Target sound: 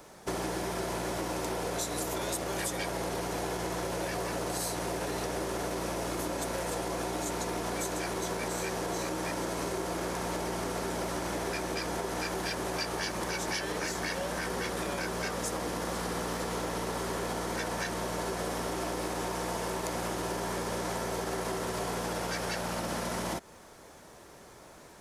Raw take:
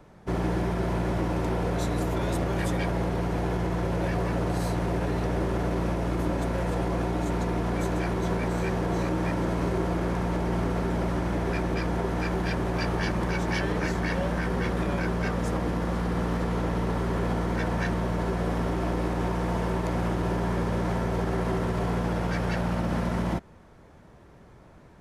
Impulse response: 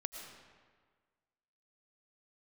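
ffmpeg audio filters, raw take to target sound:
-af "bass=frequency=250:gain=-12,treble=frequency=4000:gain=14,acompressor=threshold=-34dB:ratio=6,volume=3.5dB"

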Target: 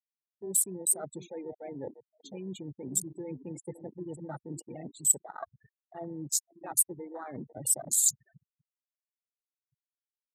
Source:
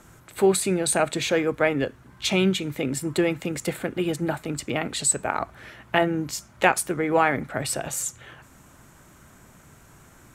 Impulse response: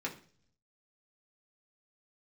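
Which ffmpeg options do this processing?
-filter_complex "[0:a]areverse,acompressor=threshold=-33dB:ratio=16,areverse,aemphasis=mode=production:type=50fm,asplit=2[link_01][link_02];[link_02]adelay=495,lowpass=frequency=1100:poles=1,volume=-9.5dB,asplit=2[link_03][link_04];[link_04]adelay=495,lowpass=frequency=1100:poles=1,volume=0.45,asplit=2[link_05][link_06];[link_06]adelay=495,lowpass=frequency=1100:poles=1,volume=0.45,asplit=2[link_07][link_08];[link_08]adelay=495,lowpass=frequency=1100:poles=1,volume=0.45,asplit=2[link_09][link_10];[link_10]adelay=495,lowpass=frequency=1100:poles=1,volume=0.45[link_11];[link_01][link_03][link_05][link_07][link_09][link_11]amix=inputs=6:normalize=0,afftfilt=real='re*gte(hypot(re,im),0.0398)':imag='im*gte(hypot(re,im),0.0398)':win_size=1024:overlap=0.75,afwtdn=0.0126,highshelf=frequency=2300:gain=7.5,volume=-2.5dB"

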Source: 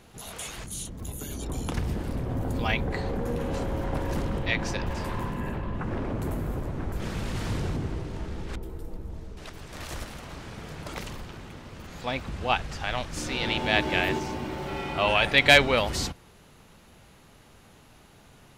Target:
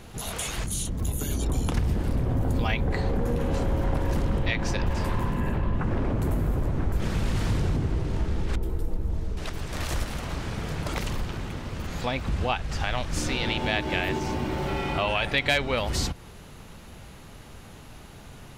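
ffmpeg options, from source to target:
ffmpeg -i in.wav -af "acompressor=threshold=-34dB:ratio=2.5,lowshelf=frequency=120:gain=6.5,volume=6.5dB" out.wav

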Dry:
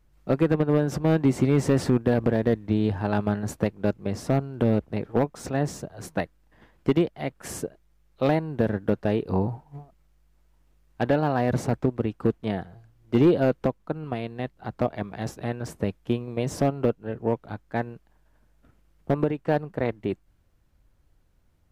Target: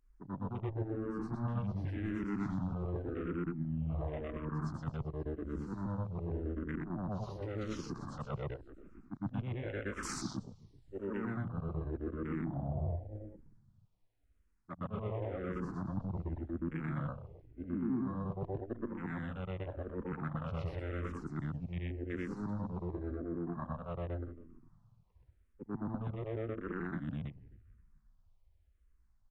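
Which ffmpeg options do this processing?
ffmpeg -i in.wav -filter_complex "[0:a]afftfilt=real='re':imag='-im':win_size=8192:overlap=0.75,asetrate=32667,aresample=44100,areverse,acompressor=threshold=-36dB:ratio=8,areverse,equalizer=frequency=1500:width=0.45:gain=6,asplit=2[link_01][link_02];[link_02]asplit=4[link_03][link_04][link_05][link_06];[link_03]adelay=264,afreqshift=-97,volume=-17.5dB[link_07];[link_04]adelay=528,afreqshift=-194,volume=-23.5dB[link_08];[link_05]adelay=792,afreqshift=-291,volume=-29.5dB[link_09];[link_06]adelay=1056,afreqshift=-388,volume=-35.6dB[link_10];[link_07][link_08][link_09][link_10]amix=inputs=4:normalize=0[link_11];[link_01][link_11]amix=inputs=2:normalize=0,afwtdn=0.00316,adynamicequalizer=threshold=0.002:dfrequency=450:dqfactor=1.5:tfrequency=450:tqfactor=1.5:attack=5:release=100:ratio=0.375:range=2:mode=cutabove:tftype=bell,acrossover=split=270[link_12][link_13];[link_13]acompressor=threshold=-41dB:ratio=6[link_14];[link_12][link_14]amix=inputs=2:normalize=0,asplit=2[link_15][link_16];[link_16]afreqshift=-0.9[link_17];[link_15][link_17]amix=inputs=2:normalize=1,volume=5.5dB" out.wav

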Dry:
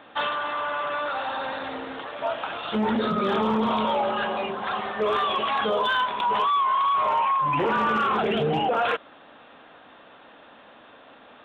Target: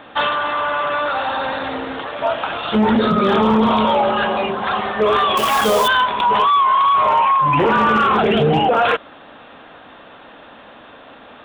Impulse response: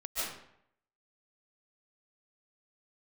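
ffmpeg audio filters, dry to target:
-filter_complex "[0:a]lowshelf=frequency=110:gain=7.5,asettb=1/sr,asplit=3[link_01][link_02][link_03];[link_01]atrim=end=5.374[link_04];[link_02]atrim=start=5.37:end=5.88,asetpts=PTS-STARTPTS,afade=type=in:duration=0.004:curve=qsin,afade=type=out:start_time=0.506:duration=0.004:curve=qsin,acrusher=bits=2:mode=log:mix=0:aa=0.000001[link_05];[link_03]atrim=start=5.876[link_06];[link_04][link_05]acrossfade=duration=0.004:curve1=hsin:curve2=qsin[link_07];[link_07][link_06]acrossfade=duration=0.004:curve1=qsin:curve2=hsin,volume=8dB"

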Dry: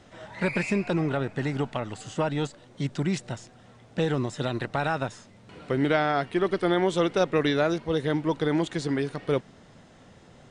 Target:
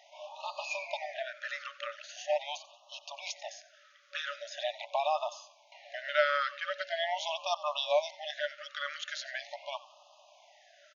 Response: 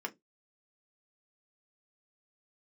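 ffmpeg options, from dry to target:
-filter_complex "[0:a]asplit=5[link_01][link_02][link_03][link_04][link_05];[link_02]adelay=87,afreqshift=-94,volume=-18dB[link_06];[link_03]adelay=174,afreqshift=-188,volume=-25.3dB[link_07];[link_04]adelay=261,afreqshift=-282,volume=-32.7dB[link_08];[link_05]adelay=348,afreqshift=-376,volume=-40dB[link_09];[link_01][link_06][link_07][link_08][link_09]amix=inputs=5:normalize=0,afftfilt=real='re*between(b*sr/4096,590,7100)':imag='im*between(b*sr/4096,590,7100)':win_size=4096:overlap=0.75,asetrate=42336,aresample=44100,afftfilt=real='re*(1-between(b*sr/1024,790*pow(1800/790,0.5+0.5*sin(2*PI*0.42*pts/sr))/1.41,790*pow(1800/790,0.5+0.5*sin(2*PI*0.42*pts/sr))*1.41))':imag='im*(1-between(b*sr/1024,790*pow(1800/790,0.5+0.5*sin(2*PI*0.42*pts/sr))/1.41,790*pow(1800/790,0.5+0.5*sin(2*PI*0.42*pts/sr))*1.41))':win_size=1024:overlap=0.75"

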